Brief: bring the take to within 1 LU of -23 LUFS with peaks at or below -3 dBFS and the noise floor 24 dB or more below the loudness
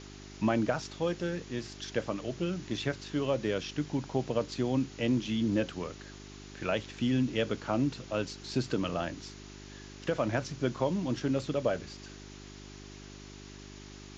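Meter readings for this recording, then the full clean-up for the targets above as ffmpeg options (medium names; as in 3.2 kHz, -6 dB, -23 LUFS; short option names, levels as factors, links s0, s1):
hum 50 Hz; highest harmonic 400 Hz; hum level -47 dBFS; noise floor -48 dBFS; noise floor target -57 dBFS; loudness -32.5 LUFS; peak level -17.0 dBFS; loudness target -23.0 LUFS
-> -af "bandreject=f=50:t=h:w=4,bandreject=f=100:t=h:w=4,bandreject=f=150:t=h:w=4,bandreject=f=200:t=h:w=4,bandreject=f=250:t=h:w=4,bandreject=f=300:t=h:w=4,bandreject=f=350:t=h:w=4,bandreject=f=400:t=h:w=4"
-af "afftdn=nr=9:nf=-48"
-af "volume=2.99"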